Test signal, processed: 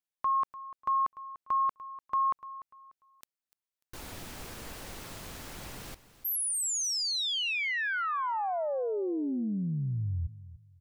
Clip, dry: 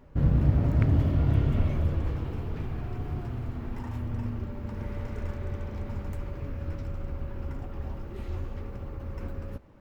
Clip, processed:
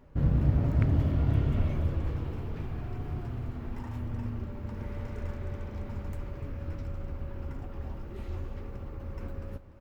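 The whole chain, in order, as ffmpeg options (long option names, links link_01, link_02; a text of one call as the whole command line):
ffmpeg -i in.wav -af "aecho=1:1:295|590|885:0.158|0.046|0.0133,volume=-2.5dB" out.wav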